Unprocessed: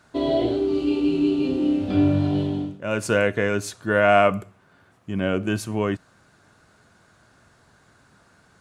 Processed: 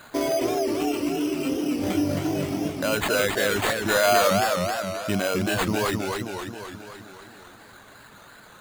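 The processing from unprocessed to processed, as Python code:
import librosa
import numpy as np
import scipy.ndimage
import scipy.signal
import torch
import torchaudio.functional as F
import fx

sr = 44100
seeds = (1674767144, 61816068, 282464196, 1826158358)

p1 = fx.low_shelf(x, sr, hz=310.0, db=-11.0)
p2 = np.repeat(p1[::8], 8)[:len(p1)]
p3 = fx.over_compress(p2, sr, threshold_db=-35.0, ratio=-1.0)
p4 = p2 + (p3 * 10.0 ** (2.0 / 20.0))
p5 = fx.dereverb_blind(p4, sr, rt60_s=1.6)
y = fx.echo_warbled(p5, sr, ms=265, feedback_pct=60, rate_hz=2.8, cents=170, wet_db=-4)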